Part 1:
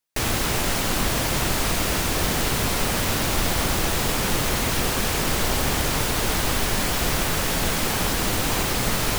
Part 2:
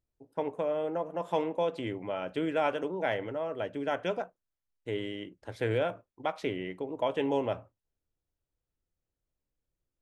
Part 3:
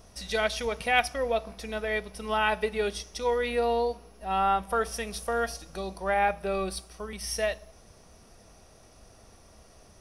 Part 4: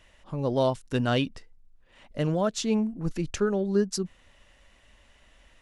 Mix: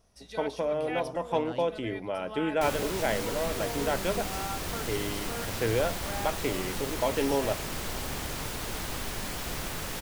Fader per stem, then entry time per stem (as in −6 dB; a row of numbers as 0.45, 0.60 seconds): −12.0, +1.5, −13.0, −16.5 decibels; 2.45, 0.00, 0.00, 0.40 seconds